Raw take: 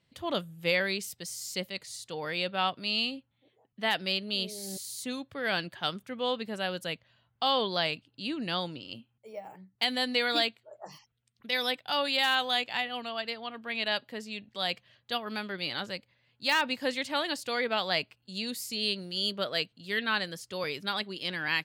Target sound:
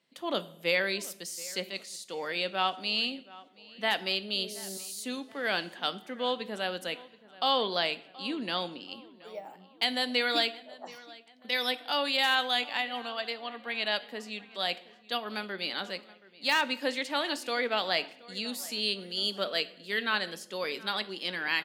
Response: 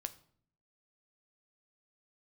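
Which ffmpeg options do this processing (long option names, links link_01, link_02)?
-filter_complex "[0:a]highpass=frequency=210:width=0.5412,highpass=frequency=210:width=1.3066,asplit=2[link_01][link_02];[link_02]adelay=726,lowpass=frequency=3300:poles=1,volume=-20dB,asplit=2[link_03][link_04];[link_04]adelay=726,lowpass=frequency=3300:poles=1,volume=0.45,asplit=2[link_05][link_06];[link_06]adelay=726,lowpass=frequency=3300:poles=1,volume=0.45[link_07];[link_01][link_03][link_05][link_07]amix=inputs=4:normalize=0,asplit=2[link_08][link_09];[1:a]atrim=start_sample=2205,asetrate=29988,aresample=44100[link_10];[link_09][link_10]afir=irnorm=-1:irlink=0,volume=3.5dB[link_11];[link_08][link_11]amix=inputs=2:normalize=0,volume=-7.5dB"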